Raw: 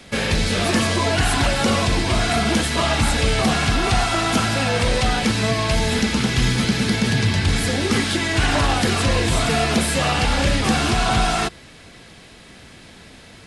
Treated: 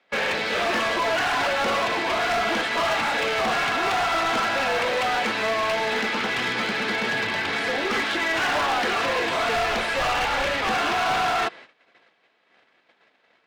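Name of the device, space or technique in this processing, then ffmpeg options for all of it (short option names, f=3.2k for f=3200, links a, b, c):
walkie-talkie: -filter_complex "[0:a]highpass=540,lowpass=2.5k,asoftclip=type=hard:threshold=-23.5dB,agate=range=-20dB:threshold=-46dB:ratio=16:detection=peak,asplit=3[a][b][c];[a]afade=t=out:st=9.55:d=0.02[d];[b]asubboost=boost=4:cutoff=95,afade=t=in:st=9.55:d=0.02,afade=t=out:st=10.67:d=0.02[e];[c]afade=t=in:st=10.67:d=0.02[f];[d][e][f]amix=inputs=3:normalize=0,volume=3.5dB"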